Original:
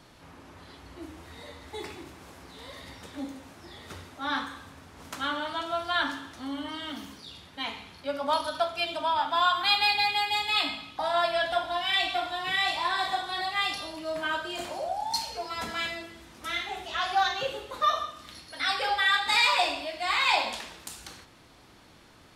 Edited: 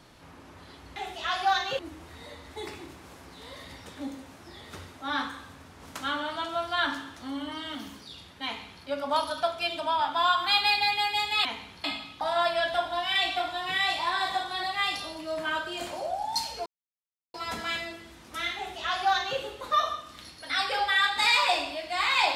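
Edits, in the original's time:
7.62–8.01 copy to 10.62
15.44 insert silence 0.68 s
16.66–17.49 copy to 0.96

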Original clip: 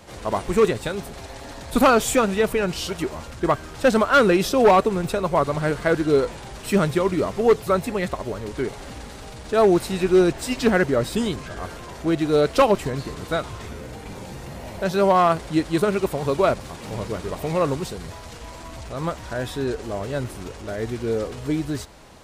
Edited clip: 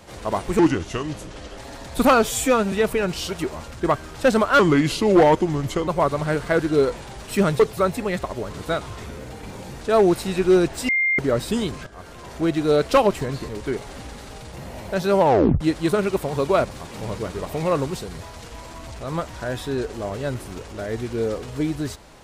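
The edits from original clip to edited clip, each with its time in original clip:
0.59–1.34 speed 76%
1.99–2.32 stretch 1.5×
4.19–5.23 speed 81%
6.95–7.49 cut
8.4–9.45 swap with 13.13–14.43
10.53–10.83 bleep 2110 Hz -17 dBFS
11.51–12 fade in, from -15 dB
15.09 tape stop 0.41 s

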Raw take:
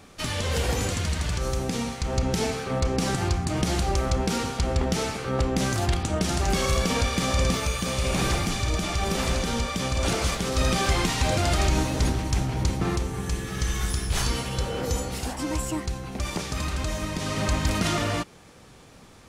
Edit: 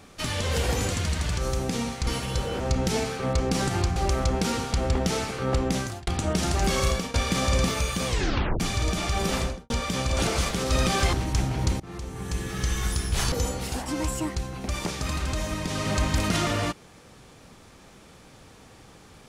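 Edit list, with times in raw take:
3.43–3.82 cut
5.53–5.93 fade out
6.74–7 fade out, to -18 dB
7.93 tape stop 0.53 s
9.2–9.56 studio fade out
10.99–12.11 cut
12.78–13.44 fade in, from -24 dB
14.3–14.83 move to 2.07

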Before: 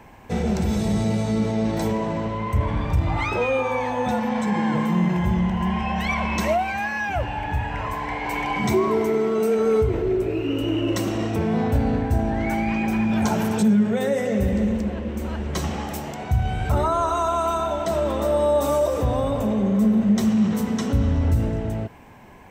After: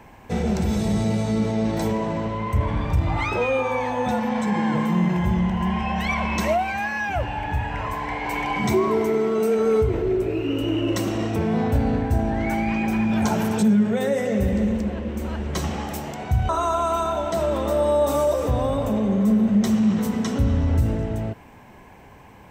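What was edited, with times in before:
16.49–17.03 cut

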